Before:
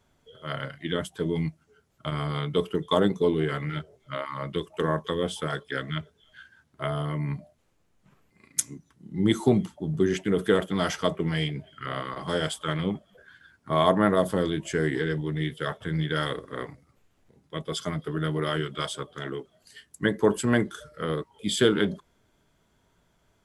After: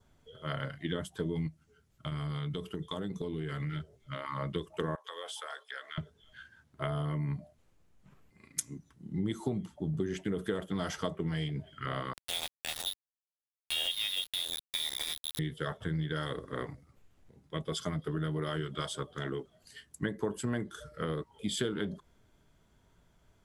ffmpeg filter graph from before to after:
-filter_complex "[0:a]asettb=1/sr,asplit=3[a][b][c];[a]atrim=end=1.474[d];[b]atrim=start=1.47:end=4.25,asetpts=PTS-STARTPTS,afade=t=in:d=0.004:c=qsin,afade=t=out:st=2.776:d=0.004:c=qsin,equalizer=f=670:t=o:w=2.3:g=-6,acompressor=threshold=-31dB:ratio=6:attack=3.2:release=140:knee=1:detection=peak[e];[c]atrim=start=4.246[f];[d][e]acrossfade=d=0.004:c1=hsin:c2=qsin[g];[g][f]acrossfade=d=0.004:c1=qsin:c2=hsin,asettb=1/sr,asplit=3[h][i][j];[h]atrim=end=4.954[k];[i]atrim=start=4.95:end=5.98,asetpts=PTS-STARTPTS,afade=t=in:d=0.004:c=qsin,afade=t=out:st=1.026:d=0.004:c=qsin,highpass=f=640:w=0.5412,highpass=f=640:w=1.3066,acompressor=threshold=-35dB:ratio=4:attack=3.2:release=140:knee=1:detection=peak[l];[j]atrim=start=5.976[m];[k][l]acrossfade=d=0.004:c1=hsin:c2=qsin[n];[n][m]acrossfade=d=0.004:c1=qsin:c2=hsin,asettb=1/sr,asplit=3[o][p][q];[o]atrim=end=12.134[r];[p]atrim=start=12.13:end=15.39,asetpts=PTS-STARTPTS,afade=t=in:d=0.004:c=qsin,afade=t=out:st=3.256:d=0.004:c=qsin,lowpass=f=3.3k:t=q:w=0.5098,lowpass=f=3.3k:t=q:w=0.6013,lowpass=f=3.3k:t=q:w=0.9,lowpass=f=3.3k:t=q:w=2.563,afreqshift=-3900,highpass=f=120:w=0.5412,highpass=f=120:w=1.3066,aeval=exprs='val(0)*gte(abs(val(0)),0.0631)':c=same[s];[q]atrim=start=15.386[t];[r][s]acrossfade=d=0.004:c1=hsin:c2=qsin[u];[u][t]acrossfade=d=0.004:c1=qsin:c2=hsin,lowshelf=f=130:g=7.5,acompressor=threshold=-28dB:ratio=5,adynamicequalizer=threshold=0.00126:dfrequency=2400:dqfactor=3.7:tfrequency=2400:tqfactor=3.7:attack=5:release=100:ratio=0.375:range=2.5:mode=cutabove:tftype=bell,volume=-2.5dB"

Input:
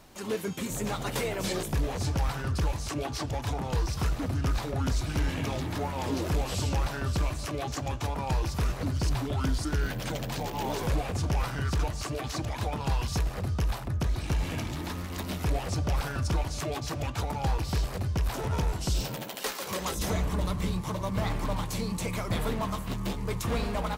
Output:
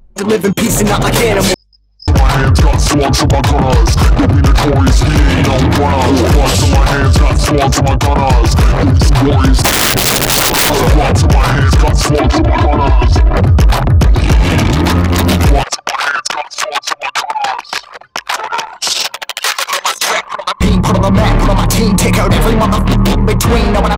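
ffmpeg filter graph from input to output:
-filter_complex "[0:a]asettb=1/sr,asplit=3[a][b][c];[a]atrim=end=1.544[d];[b]atrim=start=1.54:end=2.08,asetpts=PTS-STARTPTS,afade=t=in:d=0.004:c=qsin,afade=t=out:st=0.536:d=0.004:c=qsin,bandpass=f=5.1k:t=q:w=16,aeval=exprs='val(0)+0.000224*(sin(2*PI*50*n/s)+sin(2*PI*2*50*n/s)/2+sin(2*PI*3*50*n/s)/3+sin(2*PI*4*50*n/s)/4+sin(2*PI*5*50*n/s)/5)':c=same[e];[c]atrim=start=2.076[f];[d][e]acrossfade=d=0.004:c1=hsin:c2=qsin[g];[g][f]acrossfade=d=0.004:c1=qsin:c2=hsin,asettb=1/sr,asplit=3[h][i][j];[h]atrim=end=9.624[k];[i]atrim=start=9.62:end=10.7,asetpts=PTS-STARTPTS,afade=t=in:d=0.004:c=qsin,afade=t=out:st=1.076:d=0.004:c=qsin,aeval=exprs='(mod(26.6*val(0)+1,2)-1)/26.6':c=same,adynamicequalizer=threshold=0.00501:dfrequency=2100:dqfactor=0.7:tfrequency=2100:tqfactor=0.7:attack=5:release=100:ratio=0.375:range=2:mode=boostabove:tftype=highshelf[l];[j]atrim=start=10.696[m];[k][l]acrossfade=d=0.004:c1=hsin:c2=qsin[n];[n][m]acrossfade=d=0.004:c1=qsin:c2=hsin,asettb=1/sr,asplit=3[o][p][q];[o]atrim=end=12.194[r];[p]atrim=start=12.19:end=13.37,asetpts=PTS-STARTPTS,afade=t=in:d=0.004:c=qsin,afade=t=out:st=1.176:d=0.004:c=qsin,equalizer=f=12k:t=o:w=2.3:g=-14,aecho=1:1:3:0.83,atrim=end_sample=52038[s];[q]atrim=start=13.366[t];[r][s]acrossfade=d=0.004:c1=hsin:c2=qsin[u];[u][t]acrossfade=d=0.004:c1=qsin:c2=hsin,asettb=1/sr,asplit=3[v][w][x];[v]atrim=end=15.634[y];[w]atrim=start=15.63:end=20.61,asetpts=PTS-STARTPTS,afade=t=in:d=0.004:c=qsin,afade=t=out:st=4.976:d=0.004:c=qsin,highpass=1.1k,highshelf=f=9k:g=-10[z];[x]atrim=start=20.606[aa];[y][z]acrossfade=d=0.004:c1=hsin:c2=qsin[ab];[ab][aa]acrossfade=d=0.004:c1=qsin:c2=hsin,anlmdn=0.631,dynaudnorm=f=140:g=17:m=6dB,alimiter=level_in=23dB:limit=-1dB:release=50:level=0:latency=1,volume=-1dB"

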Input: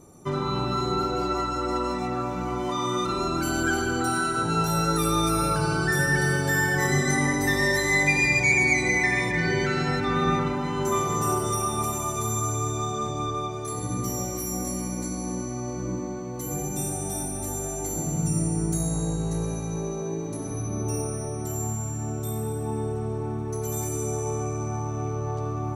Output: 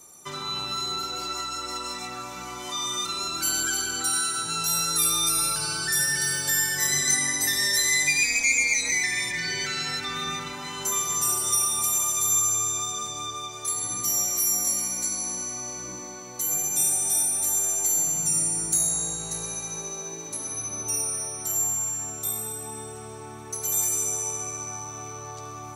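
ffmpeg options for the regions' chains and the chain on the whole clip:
-filter_complex "[0:a]asettb=1/sr,asplit=3[a][b][c];[a]atrim=end=8.234[d];[b]atrim=start=8.23:end=8.92,asetpts=PTS-STARTPTS,afade=t=in:d=0.004:c=qsin,afade=t=out:st=0.686:d=0.004:c=qsin,aecho=1:1:5.3:0.54,atrim=end_sample=30429,aeval=exprs='val(0)*sin(2*PI*110*n/s)':c=same[e];[c]atrim=start=8.916[f];[d][e]acrossfade=d=0.004:c1=hsin:c2=qsin[g];[g][f]acrossfade=d=0.004:c1=qsin:c2=hsin,tiltshelf=f=640:g=-10,acrossover=split=320|3000[h][i][j];[i]acompressor=threshold=-35dB:ratio=2[k];[h][k][j]amix=inputs=3:normalize=0,highshelf=f=2.9k:g=7,volume=-5.5dB"

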